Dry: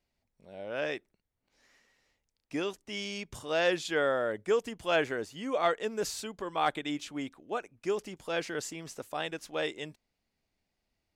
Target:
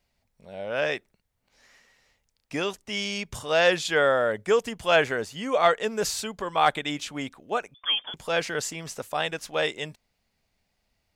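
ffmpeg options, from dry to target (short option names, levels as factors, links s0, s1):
-filter_complex "[0:a]equalizer=f=320:t=o:w=0.66:g=-7.5,asettb=1/sr,asplit=3[s0][s1][s2];[s0]atrim=end=7.744[s3];[s1]atrim=start=7.74:end=8.14,asetpts=PTS-STARTPTS,afade=t=in:d=0.004:c=qsin,afade=t=out:st=0.396:d=0.004:c=qsin,lowpass=f=3100:t=q:w=0.5098,lowpass=f=3100:t=q:w=0.6013,lowpass=f=3100:t=q:w=0.9,lowpass=f=3100:t=q:w=2.563,afreqshift=-3600[s4];[s2]atrim=start=8.136[s5];[s3][s4]acrossfade=d=0.004:c1=hsin:c2=qsin[s6];[s6][s5]acrossfade=d=0.004:c1=qsin:c2=hsin,volume=2.51"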